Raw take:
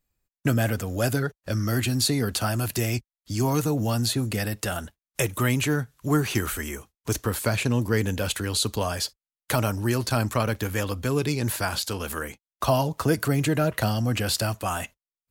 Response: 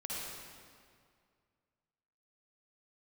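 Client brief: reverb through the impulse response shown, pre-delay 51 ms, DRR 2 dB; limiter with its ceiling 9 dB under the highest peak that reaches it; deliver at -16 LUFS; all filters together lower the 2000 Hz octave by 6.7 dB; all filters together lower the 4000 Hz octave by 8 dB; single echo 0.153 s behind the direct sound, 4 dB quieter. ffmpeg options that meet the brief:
-filter_complex "[0:a]equalizer=f=2k:t=o:g=-7.5,equalizer=f=4k:t=o:g=-8,alimiter=limit=-19.5dB:level=0:latency=1,aecho=1:1:153:0.631,asplit=2[a][b];[1:a]atrim=start_sample=2205,adelay=51[c];[b][c]afir=irnorm=-1:irlink=0,volume=-4dB[d];[a][d]amix=inputs=2:normalize=0,volume=10.5dB"

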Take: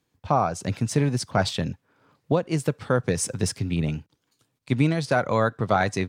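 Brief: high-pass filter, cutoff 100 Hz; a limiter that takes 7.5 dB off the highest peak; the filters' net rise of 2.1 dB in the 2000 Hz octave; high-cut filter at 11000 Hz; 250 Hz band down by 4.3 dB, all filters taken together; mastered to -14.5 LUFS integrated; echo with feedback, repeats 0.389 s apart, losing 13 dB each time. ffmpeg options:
-af "highpass=100,lowpass=11k,equalizer=f=250:t=o:g=-6,equalizer=f=2k:t=o:g=3,alimiter=limit=-15dB:level=0:latency=1,aecho=1:1:389|778|1167:0.224|0.0493|0.0108,volume=14dB"

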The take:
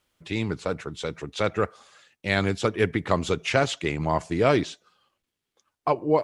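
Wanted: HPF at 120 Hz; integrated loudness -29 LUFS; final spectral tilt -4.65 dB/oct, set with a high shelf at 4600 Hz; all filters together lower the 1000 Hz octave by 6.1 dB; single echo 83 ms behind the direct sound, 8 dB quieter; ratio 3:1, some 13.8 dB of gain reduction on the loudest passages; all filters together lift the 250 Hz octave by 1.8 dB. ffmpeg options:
-af "highpass=120,equalizer=f=250:t=o:g=3.5,equalizer=f=1k:t=o:g=-8.5,highshelf=f=4.6k:g=-6,acompressor=threshold=-36dB:ratio=3,aecho=1:1:83:0.398,volume=8.5dB"

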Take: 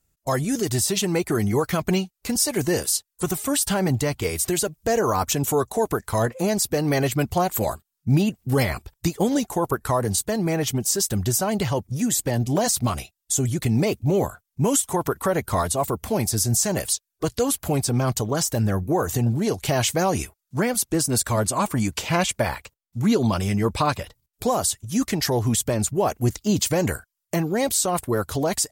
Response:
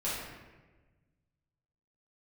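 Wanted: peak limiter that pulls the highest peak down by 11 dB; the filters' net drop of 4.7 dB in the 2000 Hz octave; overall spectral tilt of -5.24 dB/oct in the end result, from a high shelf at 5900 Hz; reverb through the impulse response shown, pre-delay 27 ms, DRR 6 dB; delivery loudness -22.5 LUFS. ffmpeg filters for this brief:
-filter_complex "[0:a]equalizer=f=2k:t=o:g=-5,highshelf=f=5.9k:g=-9,alimiter=limit=-21.5dB:level=0:latency=1,asplit=2[a][b];[1:a]atrim=start_sample=2205,adelay=27[c];[b][c]afir=irnorm=-1:irlink=0,volume=-12.5dB[d];[a][d]amix=inputs=2:normalize=0,volume=7dB"

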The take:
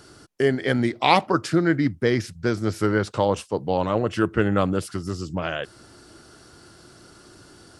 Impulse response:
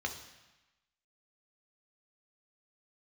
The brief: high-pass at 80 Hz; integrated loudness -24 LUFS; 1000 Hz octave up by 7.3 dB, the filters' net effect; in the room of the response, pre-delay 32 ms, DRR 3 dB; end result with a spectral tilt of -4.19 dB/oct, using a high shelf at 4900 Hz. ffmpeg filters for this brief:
-filter_complex "[0:a]highpass=80,equalizer=f=1k:t=o:g=9,highshelf=f=4.9k:g=4,asplit=2[a][b];[1:a]atrim=start_sample=2205,adelay=32[c];[b][c]afir=irnorm=-1:irlink=0,volume=-6.5dB[d];[a][d]amix=inputs=2:normalize=0,volume=-5.5dB"

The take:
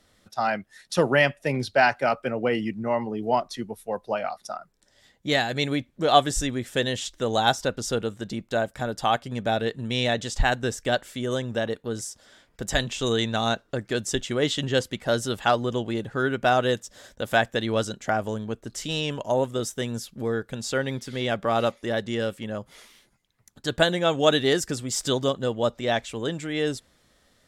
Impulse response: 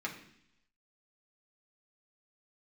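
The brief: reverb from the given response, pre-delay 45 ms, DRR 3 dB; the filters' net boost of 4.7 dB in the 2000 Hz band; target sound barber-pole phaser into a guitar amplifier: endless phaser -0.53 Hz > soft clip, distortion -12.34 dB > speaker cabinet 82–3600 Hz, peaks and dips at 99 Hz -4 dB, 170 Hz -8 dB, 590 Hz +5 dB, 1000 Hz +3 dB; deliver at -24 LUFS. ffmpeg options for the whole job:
-filter_complex "[0:a]equalizer=f=2k:t=o:g=6,asplit=2[a][b];[1:a]atrim=start_sample=2205,adelay=45[c];[b][c]afir=irnorm=-1:irlink=0,volume=-6dB[d];[a][d]amix=inputs=2:normalize=0,asplit=2[e][f];[f]afreqshift=-0.53[g];[e][g]amix=inputs=2:normalize=1,asoftclip=threshold=-19dB,highpass=82,equalizer=f=99:t=q:w=4:g=-4,equalizer=f=170:t=q:w=4:g=-8,equalizer=f=590:t=q:w=4:g=5,equalizer=f=1k:t=q:w=4:g=3,lowpass=f=3.6k:w=0.5412,lowpass=f=3.6k:w=1.3066,volume=3.5dB"

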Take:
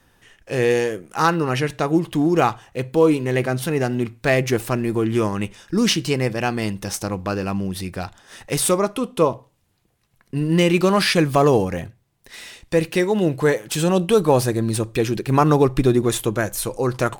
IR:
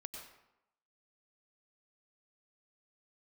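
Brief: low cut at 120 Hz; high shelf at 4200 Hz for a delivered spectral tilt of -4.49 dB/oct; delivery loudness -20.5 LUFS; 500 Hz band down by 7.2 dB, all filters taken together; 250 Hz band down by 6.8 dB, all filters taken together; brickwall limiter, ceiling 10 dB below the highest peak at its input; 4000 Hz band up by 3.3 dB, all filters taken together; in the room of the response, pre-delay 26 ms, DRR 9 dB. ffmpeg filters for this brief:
-filter_complex "[0:a]highpass=120,equalizer=f=250:t=o:g=-7,equalizer=f=500:t=o:g=-6.5,equalizer=f=4k:t=o:g=8,highshelf=f=4.2k:g=-6,alimiter=limit=-14.5dB:level=0:latency=1,asplit=2[a][b];[1:a]atrim=start_sample=2205,adelay=26[c];[b][c]afir=irnorm=-1:irlink=0,volume=-5.5dB[d];[a][d]amix=inputs=2:normalize=0,volume=6dB"

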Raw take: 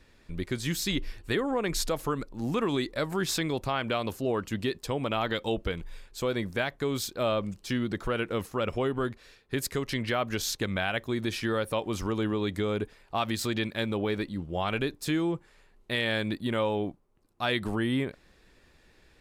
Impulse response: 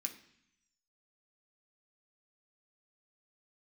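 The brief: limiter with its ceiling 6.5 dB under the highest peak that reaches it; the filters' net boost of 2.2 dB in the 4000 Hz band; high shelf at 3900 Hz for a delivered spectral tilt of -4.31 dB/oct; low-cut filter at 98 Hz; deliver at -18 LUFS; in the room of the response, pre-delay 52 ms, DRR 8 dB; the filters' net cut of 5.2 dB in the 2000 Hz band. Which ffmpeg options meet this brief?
-filter_complex "[0:a]highpass=98,equalizer=f=2k:t=o:g=-8.5,highshelf=f=3.9k:g=3.5,equalizer=f=4k:t=o:g=3.5,alimiter=limit=-21dB:level=0:latency=1,asplit=2[a][b];[1:a]atrim=start_sample=2205,adelay=52[c];[b][c]afir=irnorm=-1:irlink=0,volume=-6dB[d];[a][d]amix=inputs=2:normalize=0,volume=14dB"

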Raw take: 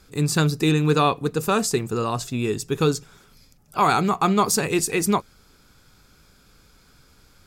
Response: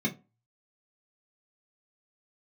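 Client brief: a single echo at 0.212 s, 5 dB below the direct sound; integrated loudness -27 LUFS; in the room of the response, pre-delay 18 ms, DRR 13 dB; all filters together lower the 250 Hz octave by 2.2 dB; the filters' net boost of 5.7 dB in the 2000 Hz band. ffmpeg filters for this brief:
-filter_complex "[0:a]equalizer=f=250:t=o:g=-3.5,equalizer=f=2k:t=o:g=8,aecho=1:1:212:0.562,asplit=2[a][b];[1:a]atrim=start_sample=2205,adelay=18[c];[b][c]afir=irnorm=-1:irlink=0,volume=-20dB[d];[a][d]amix=inputs=2:normalize=0,volume=-7.5dB"

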